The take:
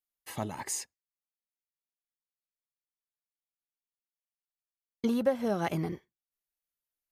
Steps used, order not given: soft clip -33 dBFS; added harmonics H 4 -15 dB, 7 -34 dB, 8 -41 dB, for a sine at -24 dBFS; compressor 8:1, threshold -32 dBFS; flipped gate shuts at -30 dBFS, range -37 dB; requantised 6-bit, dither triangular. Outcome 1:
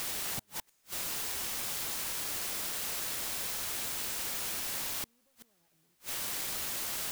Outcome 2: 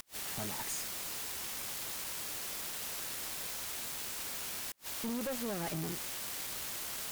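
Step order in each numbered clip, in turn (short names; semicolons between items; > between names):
compressor > soft clip > added harmonics > requantised > flipped gate; requantised > soft clip > added harmonics > compressor > flipped gate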